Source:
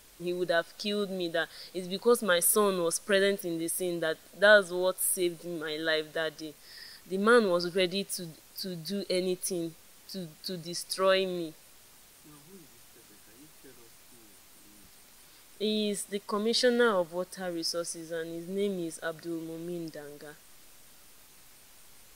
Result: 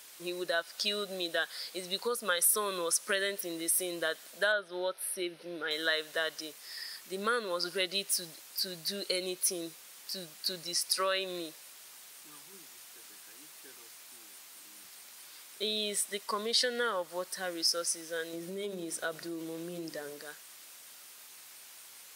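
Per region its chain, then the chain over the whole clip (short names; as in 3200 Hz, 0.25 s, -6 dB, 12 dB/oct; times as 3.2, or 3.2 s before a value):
4.52–5.71 running mean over 6 samples + notch 1100 Hz, Q 6.8
18.33–20.21 low shelf 460 Hz +9.5 dB + notches 50/100/150/200/250/300/350/400/450 Hz + compressor 2.5:1, threshold -31 dBFS
whole clip: compressor 6:1, threshold -28 dBFS; HPF 1100 Hz 6 dB/oct; gain +5.5 dB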